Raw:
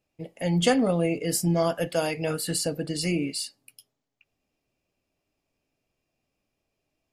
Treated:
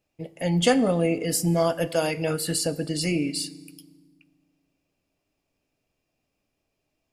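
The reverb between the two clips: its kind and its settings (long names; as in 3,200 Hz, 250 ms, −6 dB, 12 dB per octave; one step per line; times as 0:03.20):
feedback delay network reverb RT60 1.4 s, low-frequency decay 1.5×, high-frequency decay 0.85×, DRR 17.5 dB
level +1.5 dB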